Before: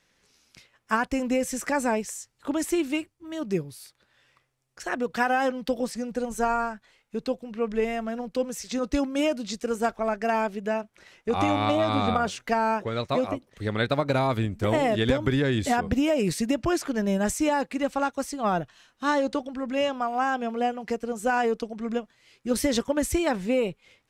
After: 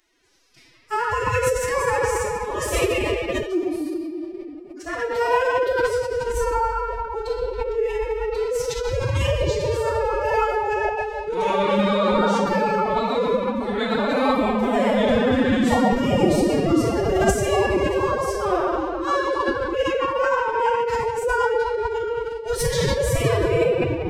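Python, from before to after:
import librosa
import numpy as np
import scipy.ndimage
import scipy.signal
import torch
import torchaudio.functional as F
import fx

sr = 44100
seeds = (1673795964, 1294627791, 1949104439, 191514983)

y = fx.room_shoebox(x, sr, seeds[0], volume_m3=190.0, walls='hard', distance_m=1.0)
y = fx.pitch_keep_formants(y, sr, semitones=11.5)
y = F.gain(torch.from_numpy(y), -2.5).numpy()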